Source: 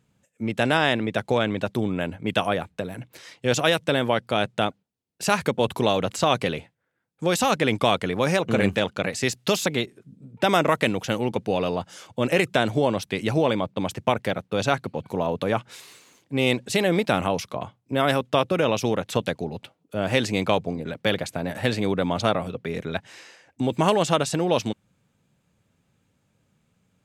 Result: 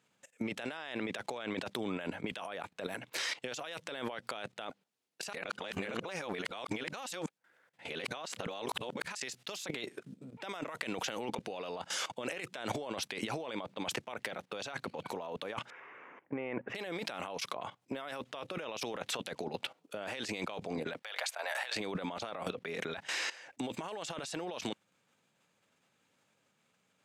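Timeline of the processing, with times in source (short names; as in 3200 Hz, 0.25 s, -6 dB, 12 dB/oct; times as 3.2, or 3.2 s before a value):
5.33–9.15 reverse
15.7–16.75 inverse Chebyshev low-pass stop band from 3900 Hz
21.02–21.76 HPF 660 Hz 24 dB/oct
whole clip: level quantiser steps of 16 dB; weighting filter A; negative-ratio compressor -44 dBFS, ratio -1; gain +4.5 dB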